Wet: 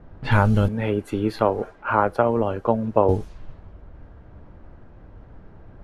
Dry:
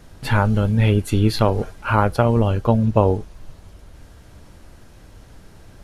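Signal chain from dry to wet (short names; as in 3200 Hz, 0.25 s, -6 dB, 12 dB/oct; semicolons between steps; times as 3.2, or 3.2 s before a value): low-pass opened by the level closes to 1100 Hz, open at -17 dBFS; 0.68–3.09 three-band isolator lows -14 dB, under 250 Hz, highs -14 dB, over 2000 Hz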